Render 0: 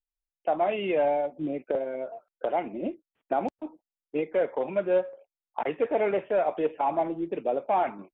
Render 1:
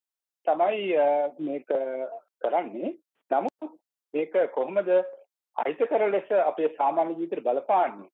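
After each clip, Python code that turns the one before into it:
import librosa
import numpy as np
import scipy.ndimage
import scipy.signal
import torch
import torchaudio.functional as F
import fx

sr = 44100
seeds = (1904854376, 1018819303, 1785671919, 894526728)

y = scipy.signal.sosfilt(scipy.signal.bessel(2, 300.0, 'highpass', norm='mag', fs=sr, output='sos'), x)
y = fx.peak_eq(y, sr, hz=2300.0, db=-2.5, octaves=0.72)
y = F.gain(torch.from_numpy(y), 3.0).numpy()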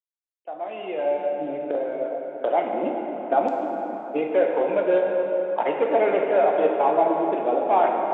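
y = fx.fade_in_head(x, sr, length_s=2.57)
y = fx.rev_plate(y, sr, seeds[0], rt60_s=4.3, hf_ratio=0.6, predelay_ms=0, drr_db=0.5)
y = F.gain(torch.from_numpy(y), 2.0).numpy()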